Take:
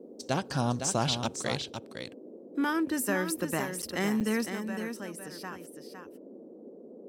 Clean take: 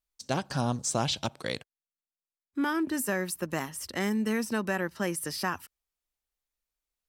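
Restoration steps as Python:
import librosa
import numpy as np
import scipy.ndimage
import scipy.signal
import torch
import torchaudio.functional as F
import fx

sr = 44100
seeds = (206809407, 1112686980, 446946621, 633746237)

y = fx.fix_interpolate(x, sr, at_s=(3.82, 4.2), length_ms=7.9)
y = fx.noise_reduce(y, sr, print_start_s=6.4, print_end_s=6.9, reduce_db=30.0)
y = fx.fix_echo_inverse(y, sr, delay_ms=508, level_db=-7.5)
y = fx.gain(y, sr, db=fx.steps((0.0, 0.0), (4.46, 10.5)))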